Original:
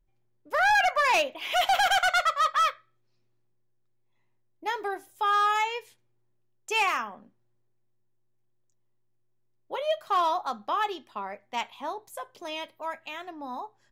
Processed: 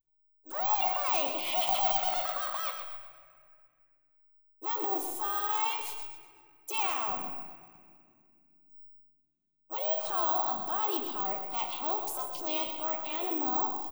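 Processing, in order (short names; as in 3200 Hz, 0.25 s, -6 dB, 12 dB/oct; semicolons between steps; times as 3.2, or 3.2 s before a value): gate with hold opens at -58 dBFS; notches 60/120 Hz; in parallel at 0 dB: limiter -24 dBFS, peak gain reduction 7.5 dB; on the sum: compressor 6:1, threshold -29 dBFS, peak gain reduction 12 dB; transient shaper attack -9 dB, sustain +8 dB; fixed phaser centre 320 Hz, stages 8; harmoniser -3 st -14 dB, +4 st -10 dB, +7 st -17 dB; feedback echo 0.124 s, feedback 39%, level -8 dB; on a send at -9 dB: reverb RT60 2.3 s, pre-delay 4 ms; on the sum: careless resampling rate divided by 2×, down none, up zero stuff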